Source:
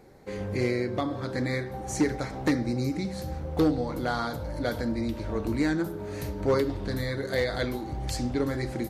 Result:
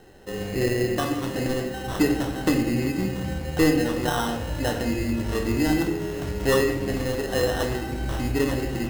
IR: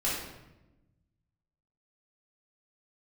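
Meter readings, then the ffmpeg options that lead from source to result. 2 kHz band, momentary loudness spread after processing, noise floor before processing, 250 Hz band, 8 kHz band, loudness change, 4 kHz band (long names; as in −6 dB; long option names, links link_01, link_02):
+5.0 dB, 7 LU, −37 dBFS, +4.5 dB, +6.5 dB, +4.5 dB, +6.5 dB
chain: -filter_complex "[0:a]acrusher=samples=19:mix=1:aa=0.000001,asplit=2[link_01][link_02];[1:a]atrim=start_sample=2205[link_03];[link_02][link_03]afir=irnorm=-1:irlink=0,volume=-9.5dB[link_04];[link_01][link_04]amix=inputs=2:normalize=0"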